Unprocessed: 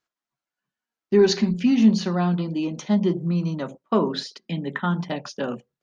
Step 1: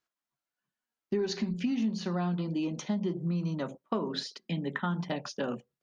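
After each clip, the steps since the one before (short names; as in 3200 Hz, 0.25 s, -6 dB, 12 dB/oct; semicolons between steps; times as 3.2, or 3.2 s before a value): compressor 6:1, threshold -24 dBFS, peak gain reduction 12.5 dB; gain -3.5 dB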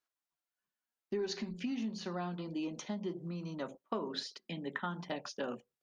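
bell 140 Hz -8.5 dB 1.3 oct; gain -4 dB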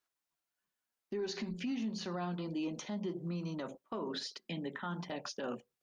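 limiter -32.5 dBFS, peak gain reduction 9.5 dB; gain +2.5 dB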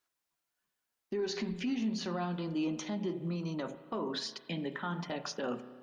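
reverb RT60 1.6 s, pre-delay 32 ms, DRR 12 dB; gain +3 dB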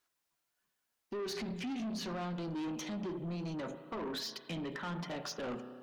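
soft clip -37.5 dBFS, distortion -9 dB; gain +2 dB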